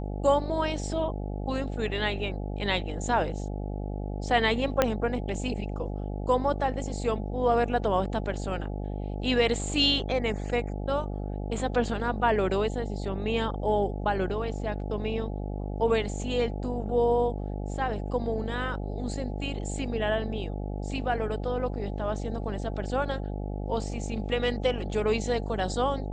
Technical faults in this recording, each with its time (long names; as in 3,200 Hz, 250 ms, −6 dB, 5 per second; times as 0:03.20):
mains buzz 50 Hz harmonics 17 −33 dBFS
0:04.82: click −7 dBFS